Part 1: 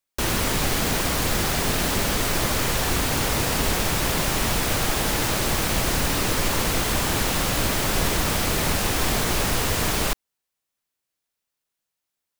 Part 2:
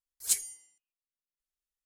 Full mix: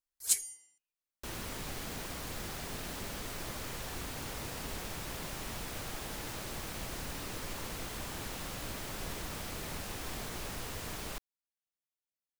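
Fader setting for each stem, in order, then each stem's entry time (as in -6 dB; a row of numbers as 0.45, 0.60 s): -18.0, -1.0 dB; 1.05, 0.00 s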